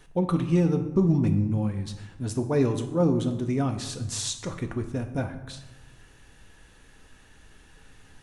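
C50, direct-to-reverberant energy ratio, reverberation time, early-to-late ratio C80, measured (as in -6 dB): 10.0 dB, 5.5 dB, 1.1 s, 12.0 dB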